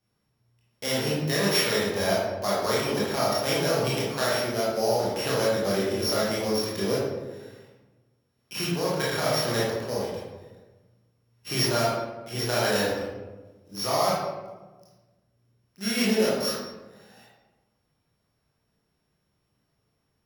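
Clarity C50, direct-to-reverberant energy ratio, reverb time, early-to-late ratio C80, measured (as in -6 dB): -1.0 dB, -7.0 dB, 1.2 s, 2.5 dB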